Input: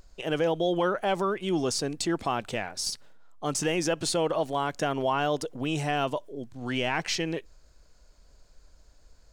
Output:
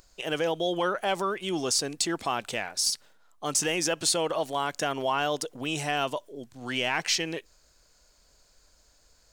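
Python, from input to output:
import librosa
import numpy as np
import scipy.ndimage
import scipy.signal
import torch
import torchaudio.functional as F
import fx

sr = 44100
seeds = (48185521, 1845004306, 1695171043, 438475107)

y = fx.tilt_eq(x, sr, slope=2.0)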